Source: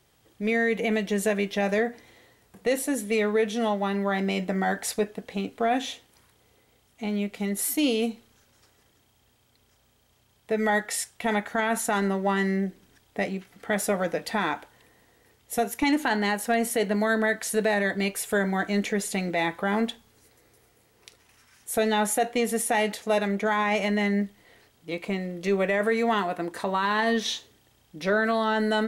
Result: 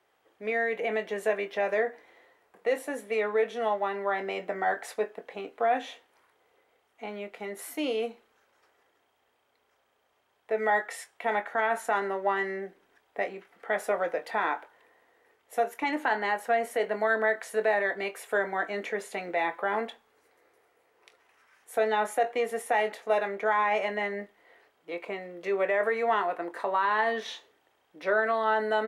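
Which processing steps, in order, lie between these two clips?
three-band isolator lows -24 dB, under 370 Hz, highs -15 dB, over 2400 Hz; doubler 23 ms -11.5 dB

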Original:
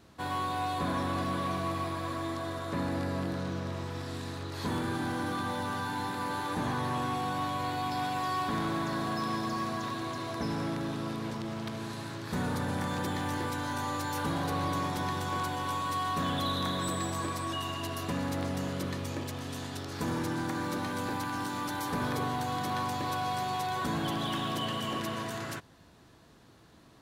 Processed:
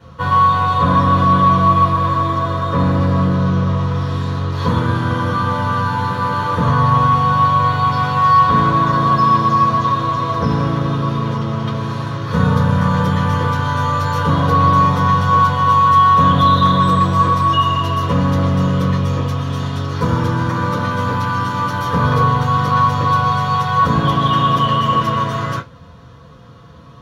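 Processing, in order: low shelf 76 Hz +7 dB; reverb RT60 0.20 s, pre-delay 3 ms, DRR -5 dB; gain -4.5 dB

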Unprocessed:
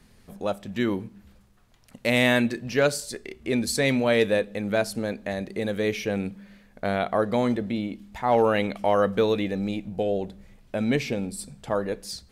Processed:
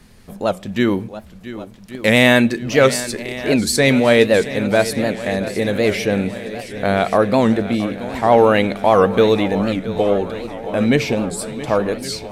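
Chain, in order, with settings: swung echo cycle 1.125 s, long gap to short 1.5:1, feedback 60%, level -14.5 dB; record warp 78 rpm, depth 160 cents; gain +8.5 dB

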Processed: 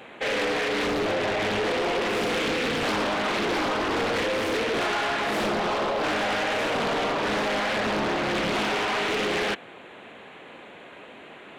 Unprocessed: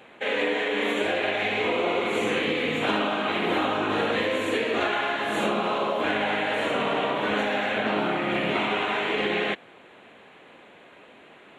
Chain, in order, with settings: 0.87–1.67 tilt -2 dB/oct; soft clip -28 dBFS, distortion -9 dB; Doppler distortion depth 0.64 ms; gain +5.5 dB

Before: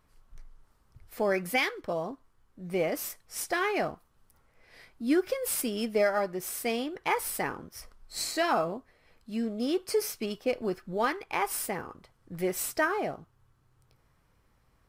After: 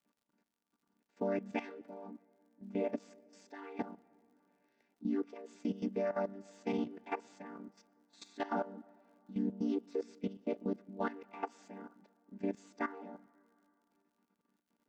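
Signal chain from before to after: chord vocoder minor triad, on G3; level quantiser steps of 15 dB; crackle 70/s -63 dBFS; on a send: reverb RT60 2.9 s, pre-delay 0.108 s, DRR 24 dB; on the sum: gain -3 dB

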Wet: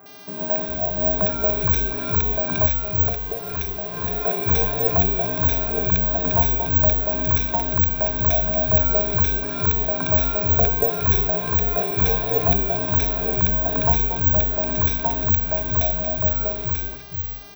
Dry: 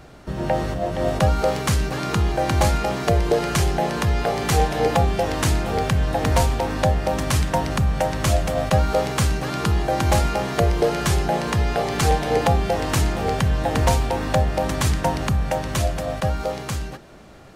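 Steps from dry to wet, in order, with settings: ripple EQ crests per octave 1.6, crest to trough 18 dB; 2.66–4.04 compressor, threshold -21 dBFS, peak gain reduction 10.5 dB; 13.92–14.52 notch comb 330 Hz; buzz 400 Hz, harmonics 16, -40 dBFS 0 dB/oct; air absorption 80 m; three bands offset in time mids, highs, lows 60/410 ms, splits 150/1600 Hz; careless resampling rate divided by 2×, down none, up zero stuff; gain -5.5 dB

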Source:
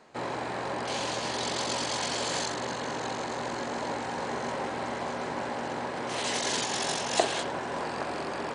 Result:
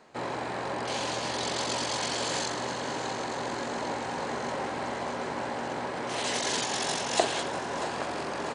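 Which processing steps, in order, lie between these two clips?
feedback echo 0.643 s, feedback 59%, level -14 dB

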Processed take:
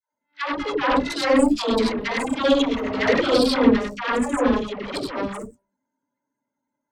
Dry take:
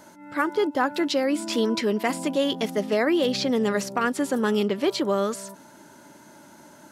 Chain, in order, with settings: non-linear reverb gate 0.12 s rising, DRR -2.5 dB; loudest bins only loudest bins 64; ripple EQ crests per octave 1, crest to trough 10 dB; added harmonics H 7 -17 dB, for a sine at -3 dBFS; dispersion lows, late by 0.143 s, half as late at 540 Hz

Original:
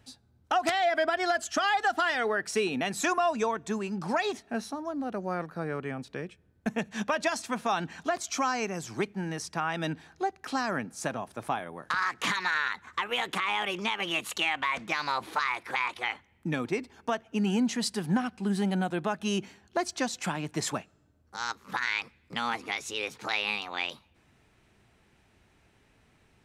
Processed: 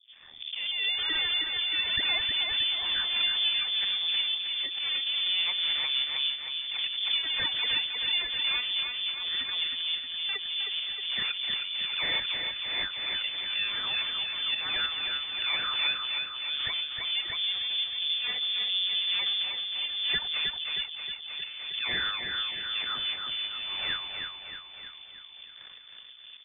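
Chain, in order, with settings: spectral delay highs late, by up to 0.603 s; recorder AGC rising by 43 dB/s; gate -32 dBFS, range -40 dB; auto swell 0.126 s; limiter -26 dBFS, peak gain reduction 10 dB; hard clip -34 dBFS, distortion -11 dB; LFO low-pass sine 1.1 Hz 470–1900 Hz; half-wave rectifier; on a send: feedback echo 0.314 s, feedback 54%, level -5 dB; on the sum: inverted band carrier 3500 Hz; backwards sustainer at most 37 dB/s; gain +3.5 dB

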